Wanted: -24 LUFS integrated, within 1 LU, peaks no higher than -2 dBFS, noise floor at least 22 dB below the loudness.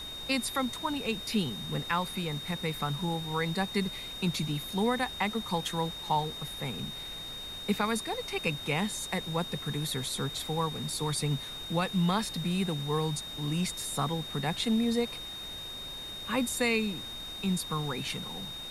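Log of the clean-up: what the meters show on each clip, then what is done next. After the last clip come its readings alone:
steady tone 3700 Hz; tone level -39 dBFS; noise floor -41 dBFS; noise floor target -54 dBFS; loudness -32.0 LUFS; peak -15.5 dBFS; loudness target -24.0 LUFS
-> notch 3700 Hz, Q 30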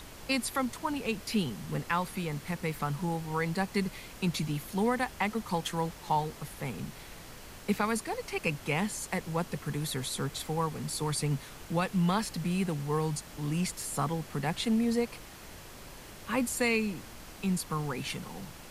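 steady tone none; noise floor -48 dBFS; noise floor target -55 dBFS
-> noise print and reduce 7 dB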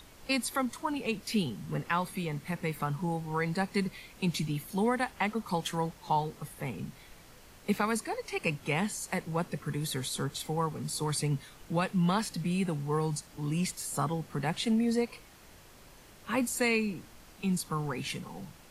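noise floor -55 dBFS; loudness -32.5 LUFS; peak -15.5 dBFS; loudness target -24.0 LUFS
-> gain +8.5 dB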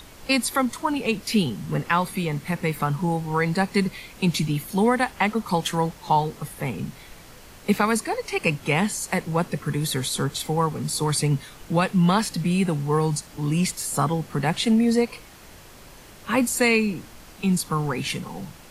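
loudness -24.0 LUFS; peak -7.0 dBFS; noise floor -46 dBFS

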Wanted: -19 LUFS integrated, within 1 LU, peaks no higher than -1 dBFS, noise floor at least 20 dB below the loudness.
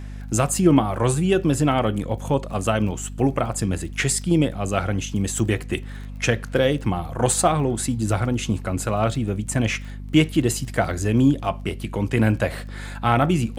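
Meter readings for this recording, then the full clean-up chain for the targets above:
ticks 22/s; hum 50 Hz; harmonics up to 250 Hz; hum level -31 dBFS; loudness -22.0 LUFS; peak -3.0 dBFS; loudness target -19.0 LUFS
-> de-click; de-hum 50 Hz, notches 5; gain +3 dB; limiter -1 dBFS

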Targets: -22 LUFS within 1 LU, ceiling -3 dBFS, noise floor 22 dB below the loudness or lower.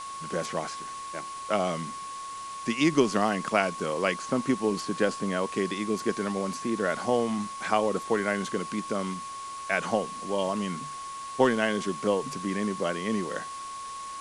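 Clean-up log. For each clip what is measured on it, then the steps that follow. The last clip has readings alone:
steady tone 1100 Hz; tone level -36 dBFS; noise floor -39 dBFS; noise floor target -51 dBFS; loudness -29.0 LUFS; peak -7.0 dBFS; loudness target -22.0 LUFS
-> notch 1100 Hz, Q 30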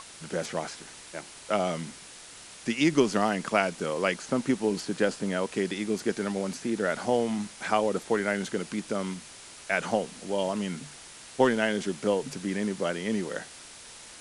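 steady tone none; noise floor -47 dBFS; noise floor target -51 dBFS
-> denoiser 6 dB, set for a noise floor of -47 dBFS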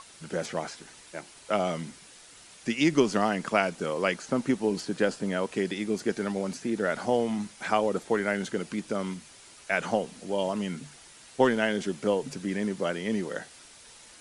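noise floor -52 dBFS; loudness -29.0 LUFS; peak -7.5 dBFS; loudness target -22.0 LUFS
-> gain +7 dB; limiter -3 dBFS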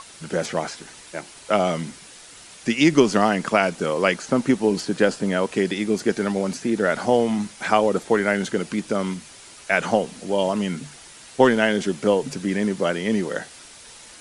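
loudness -22.0 LUFS; peak -3.0 dBFS; noise floor -45 dBFS

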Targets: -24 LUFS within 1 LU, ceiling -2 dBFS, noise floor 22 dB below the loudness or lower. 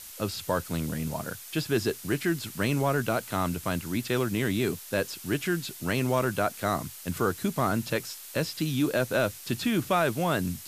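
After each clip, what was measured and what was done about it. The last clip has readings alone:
noise floor -44 dBFS; noise floor target -51 dBFS; loudness -29.0 LUFS; peak -12.0 dBFS; loudness target -24.0 LUFS
-> noise print and reduce 7 dB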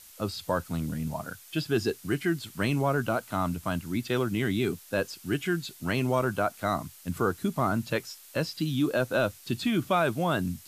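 noise floor -51 dBFS; noise floor target -52 dBFS
-> noise print and reduce 6 dB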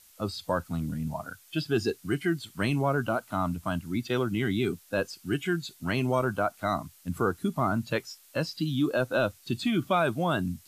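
noise floor -57 dBFS; loudness -29.5 LUFS; peak -13.0 dBFS; loudness target -24.0 LUFS
-> gain +5.5 dB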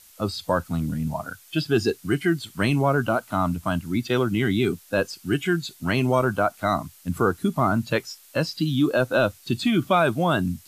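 loudness -24.0 LUFS; peak -7.5 dBFS; noise floor -52 dBFS

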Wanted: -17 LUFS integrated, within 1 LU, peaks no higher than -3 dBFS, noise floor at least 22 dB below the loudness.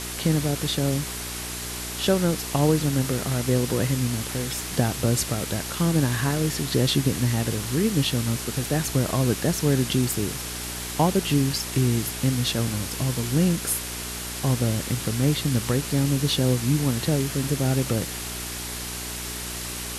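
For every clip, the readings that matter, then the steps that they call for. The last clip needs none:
hum 60 Hz; harmonics up to 420 Hz; hum level -37 dBFS; noise floor -33 dBFS; noise floor target -47 dBFS; loudness -24.5 LUFS; peak -7.0 dBFS; loudness target -17.0 LUFS
-> de-hum 60 Hz, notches 7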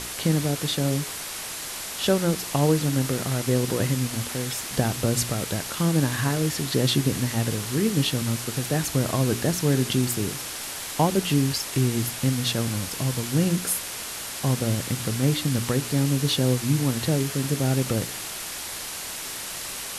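hum none; noise floor -34 dBFS; noise floor target -47 dBFS
-> denoiser 13 dB, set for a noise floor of -34 dBFS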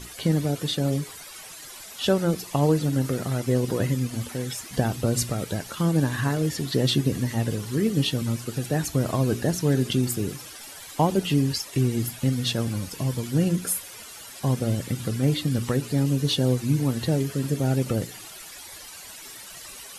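noise floor -42 dBFS; noise floor target -47 dBFS
-> denoiser 6 dB, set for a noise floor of -42 dBFS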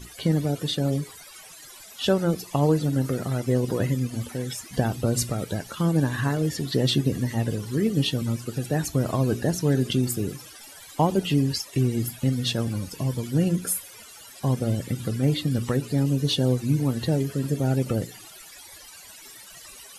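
noise floor -46 dBFS; noise floor target -48 dBFS
-> denoiser 6 dB, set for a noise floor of -46 dBFS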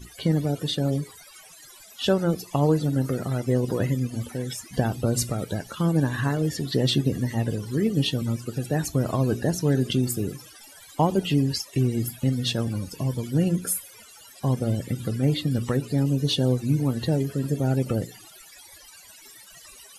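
noise floor -49 dBFS; loudness -25.5 LUFS; peak -8.5 dBFS; loudness target -17.0 LUFS
-> gain +8.5 dB; limiter -3 dBFS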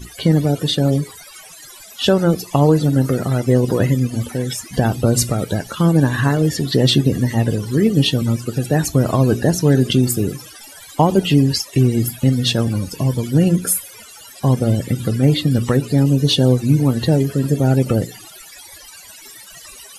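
loudness -17.0 LUFS; peak -3.0 dBFS; noise floor -40 dBFS

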